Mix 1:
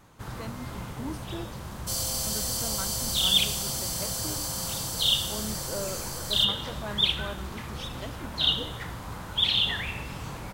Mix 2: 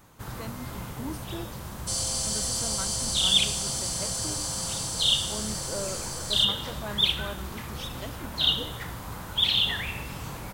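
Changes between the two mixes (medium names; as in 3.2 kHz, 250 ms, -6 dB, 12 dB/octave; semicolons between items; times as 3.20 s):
second sound: add steep low-pass 9.9 kHz 48 dB/octave; master: add treble shelf 11 kHz +11 dB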